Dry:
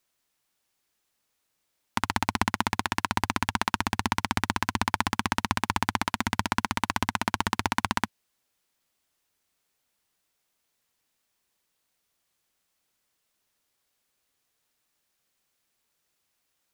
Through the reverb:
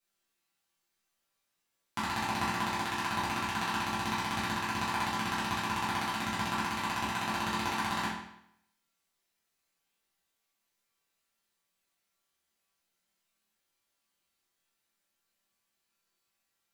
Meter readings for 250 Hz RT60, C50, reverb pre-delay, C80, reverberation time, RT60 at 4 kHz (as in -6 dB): 0.75 s, 1.5 dB, 5 ms, 6.0 dB, 0.75 s, 0.70 s